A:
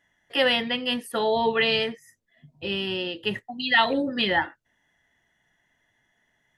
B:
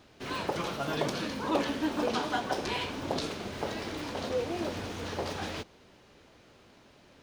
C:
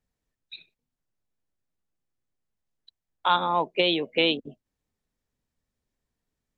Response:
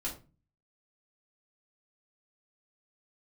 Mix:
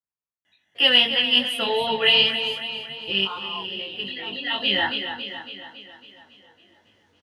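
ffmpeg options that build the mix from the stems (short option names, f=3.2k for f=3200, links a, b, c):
-filter_complex "[0:a]equalizer=f=2.9k:w=4:g=13,adelay=450,volume=1dB,asplit=2[a][b];[b]volume=-9.5dB[c];[1:a]acompressor=threshold=-45dB:ratio=2,adelay=2100,volume=-18dB[d];[2:a]equalizer=f=1.1k:w=1.5:g=12,volume=-18.5dB,asplit=2[e][f];[f]apad=whole_len=309922[g];[a][g]sidechaincompress=threshold=-59dB:ratio=4:attack=12:release=287[h];[c]aecho=0:1:277|554|831|1108|1385|1662|1939|2216|2493:1|0.57|0.325|0.185|0.106|0.0602|0.0343|0.0195|0.0111[i];[h][d][e][i]amix=inputs=4:normalize=0,highpass=80,flanger=delay=18.5:depth=2.2:speed=2.6,adynamicequalizer=threshold=0.0447:dfrequency=3800:dqfactor=0.7:tfrequency=3800:tqfactor=0.7:attack=5:release=100:ratio=0.375:range=2:mode=boostabove:tftype=highshelf"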